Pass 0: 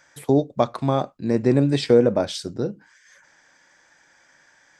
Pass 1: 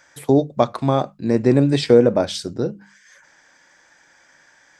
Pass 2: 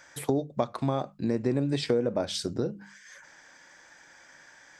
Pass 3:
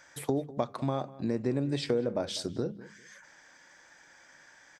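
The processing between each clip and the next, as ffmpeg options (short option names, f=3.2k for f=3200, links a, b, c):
-af "bandreject=f=50:t=h:w=6,bandreject=f=100:t=h:w=6,bandreject=f=150:t=h:w=6,bandreject=f=200:t=h:w=6,volume=3dB"
-af "acompressor=threshold=-27dB:ratio=3"
-filter_complex "[0:a]asplit=2[a][b];[b]adelay=199,lowpass=f=2.1k:p=1,volume=-18dB,asplit=2[c][d];[d]adelay=199,lowpass=f=2.1k:p=1,volume=0.23[e];[a][c][e]amix=inputs=3:normalize=0,volume=-3dB"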